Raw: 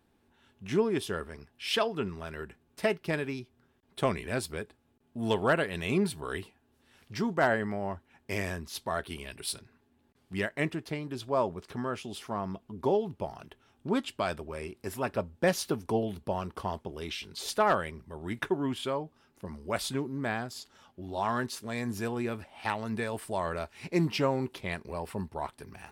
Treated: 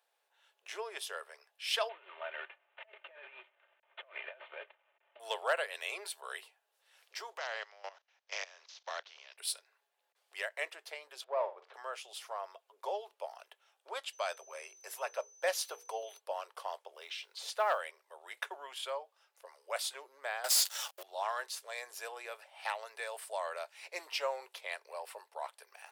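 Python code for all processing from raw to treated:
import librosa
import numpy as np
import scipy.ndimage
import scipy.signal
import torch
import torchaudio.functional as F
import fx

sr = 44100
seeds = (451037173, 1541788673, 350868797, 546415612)

y = fx.chain(x, sr, fx.cvsd(bps=16000),
    fx.comb(ms=3.3, depth=0.51),
    fx.over_compress(threshold_db=-38.0, ratio=-0.5), at=(1.89, 5.2))
y = fx.spec_flatten(y, sr, power=0.58, at=(7.36, 9.37), fade=0.02)
y = fx.ellip_lowpass(y, sr, hz=6200.0, order=4, stop_db=40, at=(7.36, 9.37), fade=0.02)
y = fx.level_steps(y, sr, step_db=17, at=(7.36, 9.37), fade=0.02)
y = fx.chain(y, sr, fx.leveller(passes=1),
    fx.spacing_loss(db_at_10k=37),
    fx.room_flutter(wall_m=7.9, rt60_s=0.28), at=(11.24, 11.74))
y = fx.hum_notches(y, sr, base_hz=60, count=8, at=(14.12, 16.18), fade=0.02)
y = fx.dmg_tone(y, sr, hz=6100.0, level_db=-56.0, at=(14.12, 16.18), fade=0.02)
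y = fx.chain(y, sr, fx.lowpass(hz=3900.0, slope=6),
    fx.quant_companded(bits=8), at=(16.95, 17.8))
y = fx.chain(y, sr, fx.riaa(side='recording'),
    fx.leveller(passes=5), at=(20.44, 21.03))
y = scipy.signal.sosfilt(scipy.signal.butter(8, 520.0, 'highpass', fs=sr, output='sos'), y)
y = fx.peak_eq(y, sr, hz=1000.0, db=-4.5, octaves=2.4)
y = y * 10.0 ** (-1.0 / 20.0)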